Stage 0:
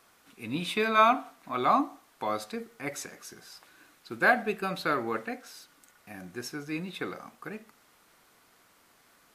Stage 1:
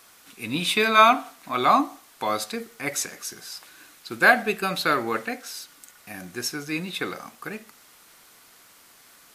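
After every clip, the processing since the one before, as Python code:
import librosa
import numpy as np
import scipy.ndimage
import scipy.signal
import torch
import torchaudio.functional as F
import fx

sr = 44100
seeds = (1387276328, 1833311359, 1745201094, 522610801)

y = fx.high_shelf(x, sr, hz=2300.0, db=9.0)
y = F.gain(torch.from_numpy(y), 4.0).numpy()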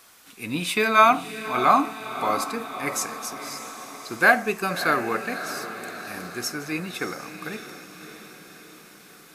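y = fx.echo_diffused(x, sr, ms=618, feedback_pct=57, wet_db=-11)
y = fx.dynamic_eq(y, sr, hz=3600.0, q=2.3, threshold_db=-43.0, ratio=4.0, max_db=-6)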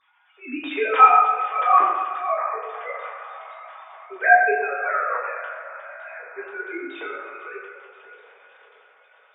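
y = fx.sine_speech(x, sr)
y = fx.rev_fdn(y, sr, rt60_s=1.5, lf_ratio=0.85, hf_ratio=0.55, size_ms=73.0, drr_db=-6.0)
y = F.gain(torch.from_numpy(y), -6.5).numpy()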